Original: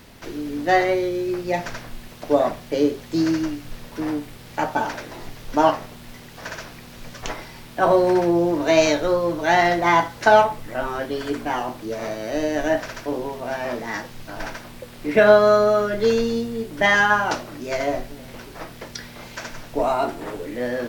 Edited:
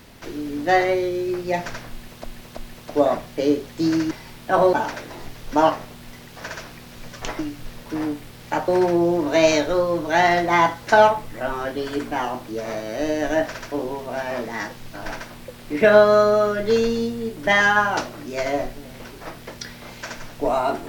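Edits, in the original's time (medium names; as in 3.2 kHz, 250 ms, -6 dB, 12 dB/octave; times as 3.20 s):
1.91–2.24 s: loop, 3 plays
3.45–4.74 s: swap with 7.40–8.02 s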